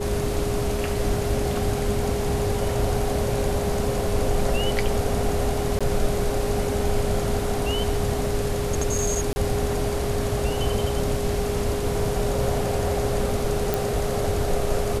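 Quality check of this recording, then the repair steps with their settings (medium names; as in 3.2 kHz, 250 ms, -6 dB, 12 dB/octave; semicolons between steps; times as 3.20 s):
whine 410 Hz -27 dBFS
5.79–5.81 s: dropout 16 ms
9.33–9.36 s: dropout 30 ms
13.74 s: pop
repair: de-click; band-stop 410 Hz, Q 30; interpolate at 5.79 s, 16 ms; interpolate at 9.33 s, 30 ms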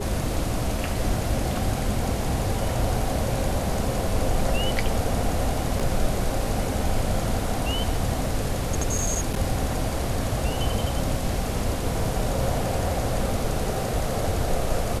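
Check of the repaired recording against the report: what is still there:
nothing left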